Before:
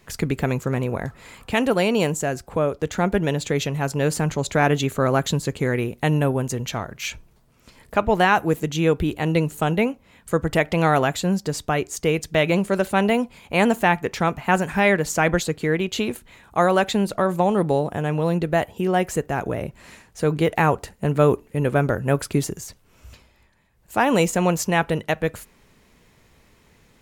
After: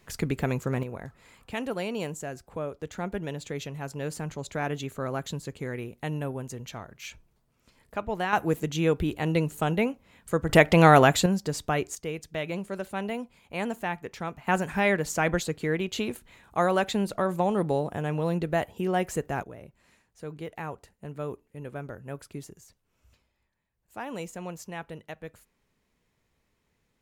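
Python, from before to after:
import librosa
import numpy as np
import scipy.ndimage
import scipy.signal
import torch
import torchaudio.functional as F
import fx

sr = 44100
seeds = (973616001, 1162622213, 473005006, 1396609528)

y = fx.gain(x, sr, db=fx.steps((0.0, -5.0), (0.83, -12.0), (8.33, -5.0), (10.49, 2.5), (11.26, -4.5), (11.95, -13.0), (14.47, -6.0), (19.43, -18.0)))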